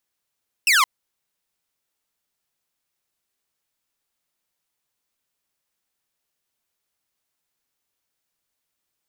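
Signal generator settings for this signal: laser zap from 2800 Hz, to 980 Hz, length 0.17 s saw, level -11 dB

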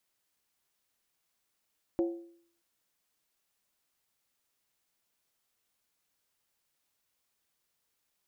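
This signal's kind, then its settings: skin hit, lowest mode 340 Hz, decay 0.60 s, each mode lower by 9 dB, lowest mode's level -23.5 dB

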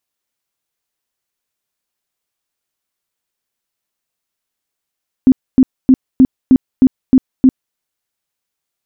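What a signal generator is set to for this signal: tone bursts 260 Hz, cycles 13, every 0.31 s, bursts 8, -3 dBFS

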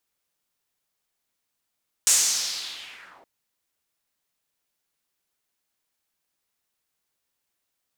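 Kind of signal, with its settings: swept filtered noise pink, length 1.17 s bandpass, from 7700 Hz, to 550 Hz, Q 2.7, linear, gain ramp -38 dB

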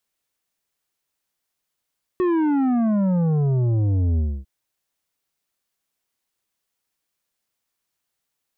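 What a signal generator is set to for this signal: sub drop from 370 Hz, over 2.25 s, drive 9 dB, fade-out 0.27 s, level -18 dB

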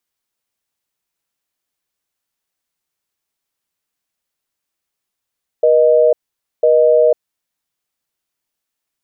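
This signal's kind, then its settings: call progress tone busy tone, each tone -10.5 dBFS 1.53 s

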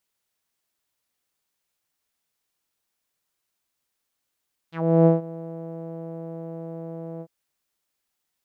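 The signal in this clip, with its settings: synth note saw E3 12 dB/oct, low-pass 580 Hz, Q 3.1, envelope 3 oct, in 0.10 s, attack 0.339 s, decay 0.15 s, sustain -21 dB, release 0.06 s, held 2.49 s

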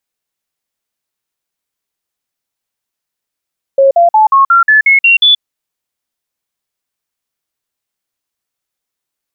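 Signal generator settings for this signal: stepped sine 545 Hz up, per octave 3, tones 9, 0.13 s, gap 0.05 s -3.5 dBFS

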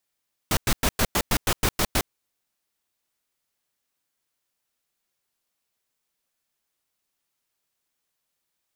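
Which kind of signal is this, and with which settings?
noise bursts pink, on 0.06 s, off 0.10 s, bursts 10, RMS -21 dBFS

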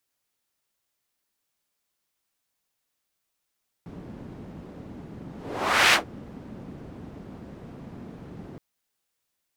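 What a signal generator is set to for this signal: whoosh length 4.72 s, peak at 2.07, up 0.65 s, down 0.13 s, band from 210 Hz, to 2200 Hz, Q 1.1, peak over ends 24 dB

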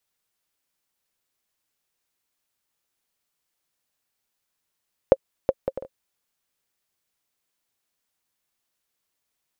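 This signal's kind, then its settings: bouncing ball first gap 0.37 s, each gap 0.51, 535 Hz, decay 45 ms -1.5 dBFS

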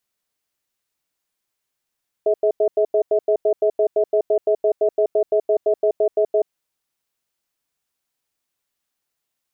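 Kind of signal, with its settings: cadence 422 Hz, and 641 Hz, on 0.08 s, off 0.09 s, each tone -16.5 dBFS 4.20 s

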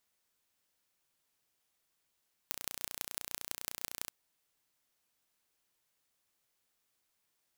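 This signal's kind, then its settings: pulse train 29.9/s, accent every 5, -7.5 dBFS 1.59 s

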